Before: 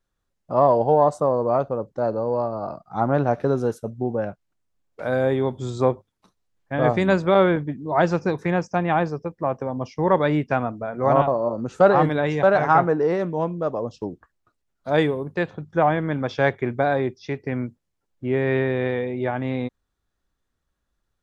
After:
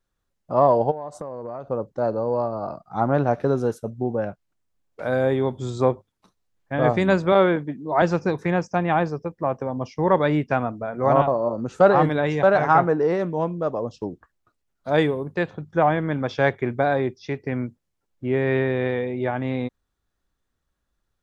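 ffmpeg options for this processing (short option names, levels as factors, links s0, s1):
-filter_complex "[0:a]asplit=3[s0][s1][s2];[s0]afade=t=out:st=0.9:d=0.02[s3];[s1]acompressor=threshold=0.0398:ratio=16:attack=3.2:release=140:knee=1:detection=peak,afade=t=in:st=0.9:d=0.02,afade=t=out:st=1.68:d=0.02[s4];[s2]afade=t=in:st=1.68:d=0.02[s5];[s3][s4][s5]amix=inputs=3:normalize=0,asettb=1/sr,asplit=3[s6][s7][s8];[s6]atrim=end=7.324[s9];[s7]atrim=start=7.32:end=8.02,asetpts=PTS-STARTPTS,afade=t=in:d=0.004:c=qsin,afade=t=out:st=0.696:d=0.004:c=qsin,highpass=170[s10];[s8]atrim=start=8.016[s11];[s9][s10]acrossfade=d=0.004:c1=hsin:c2=qsin[s12];[s12][s11]acrossfade=d=0.004:c1=qsin:c2=hsin"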